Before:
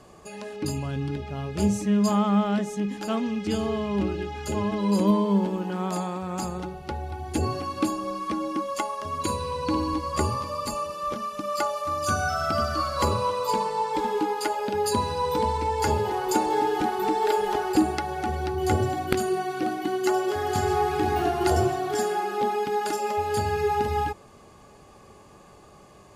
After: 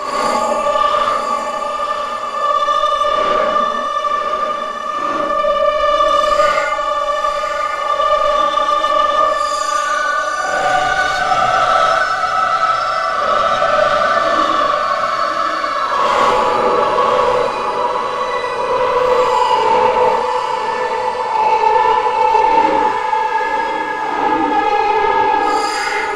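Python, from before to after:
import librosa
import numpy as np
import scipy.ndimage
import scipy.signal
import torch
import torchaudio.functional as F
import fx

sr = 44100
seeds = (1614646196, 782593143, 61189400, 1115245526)

p1 = scipy.signal.sosfilt(scipy.signal.butter(2, 6700.0, 'lowpass', fs=sr, output='sos'), x)
p2 = fx.high_shelf_res(p1, sr, hz=2400.0, db=-8.5, q=1.5)
p3 = fx.over_compress(p2, sr, threshold_db=-27.0, ratio=-0.5)
p4 = p2 + F.gain(torch.from_numpy(p3), -2.0).numpy()
p5 = fx.filter_lfo_highpass(p4, sr, shape='square', hz=2.5, low_hz=520.0, high_hz=1900.0, q=0.9)
p6 = fx.paulstretch(p5, sr, seeds[0], factor=6.8, window_s=0.05, from_s=10.66)
p7 = 10.0 ** (-22.0 / 20.0) * np.tanh(p6 / 10.0 ** (-22.0 / 20.0))
p8 = fx.echo_diffused(p7, sr, ms=1029, feedback_pct=44, wet_db=-6)
p9 = fx.rev_gated(p8, sr, seeds[1], gate_ms=190, shape='rising', drr_db=-6.5)
y = F.gain(torch.from_numpy(p9), 5.0).numpy()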